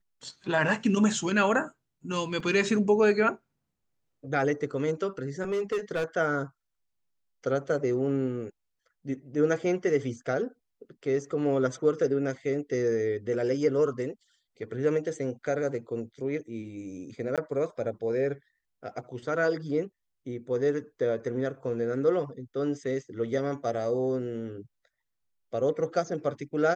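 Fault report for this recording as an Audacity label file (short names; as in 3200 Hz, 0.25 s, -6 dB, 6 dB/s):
2.400000	2.400000	gap 3.5 ms
5.420000	6.040000	clipped -24.5 dBFS
17.360000	17.380000	gap 17 ms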